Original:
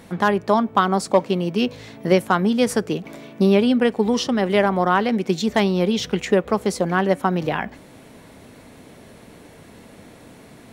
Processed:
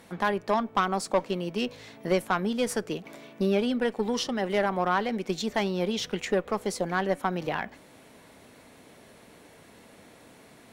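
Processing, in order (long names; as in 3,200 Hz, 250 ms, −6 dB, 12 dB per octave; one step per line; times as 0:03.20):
low-shelf EQ 320 Hz −8 dB
tube saturation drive 11 dB, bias 0.4
level −3.5 dB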